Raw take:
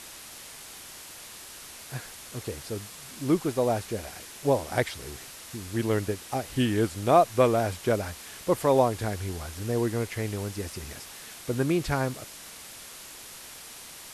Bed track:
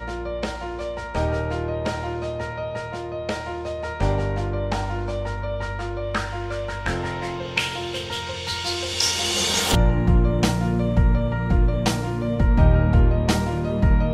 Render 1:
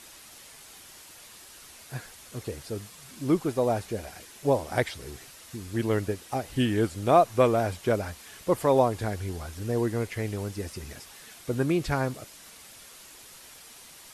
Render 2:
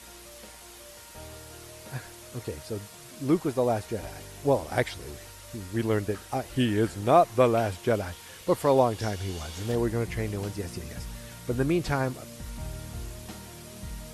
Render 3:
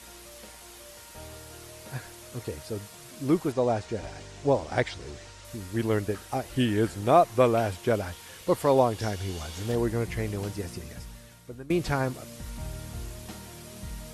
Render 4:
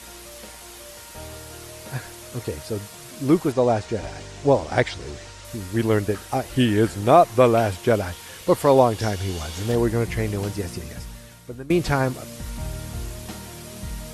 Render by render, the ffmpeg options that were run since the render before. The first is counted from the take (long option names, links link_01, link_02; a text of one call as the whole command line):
ffmpeg -i in.wav -af "afftdn=noise_reduction=6:noise_floor=-45" out.wav
ffmpeg -i in.wav -i bed.wav -filter_complex "[1:a]volume=-22dB[link_01];[0:a][link_01]amix=inputs=2:normalize=0" out.wav
ffmpeg -i in.wav -filter_complex "[0:a]asettb=1/sr,asplit=3[link_01][link_02][link_03];[link_01]atrim=end=3.524[link_04];[link_02]atrim=start=3.52:end=5.45,asetpts=PTS-STARTPTS,afade=type=in:duration=0.004:curve=qsin,afade=type=out:start_time=1.926:duration=0.004:curve=qsin,lowpass=frequency=7700:width=0.5412,lowpass=frequency=7700:width=1.3066[link_05];[link_03]atrim=start=5.446[link_06];[link_04][link_05]acrossfade=duration=0.004:curve1=hsin:curve2=qsin[link_07];[link_07][link_06]acrossfade=duration=0.004:curve1=qsin:curve2=hsin,asplit=2[link_08][link_09];[link_08]atrim=end=11.7,asetpts=PTS-STARTPTS,afade=type=out:start_time=10.58:duration=1.12:silence=0.0944061[link_10];[link_09]atrim=start=11.7,asetpts=PTS-STARTPTS,afade=type=in:duration=0.004:curve=hsin:silence=0.0944061[link_11];[link_10][link_11]concat=n=2:v=0:a=1" out.wav
ffmpeg -i in.wav -af "volume=6dB,alimiter=limit=-3dB:level=0:latency=1" out.wav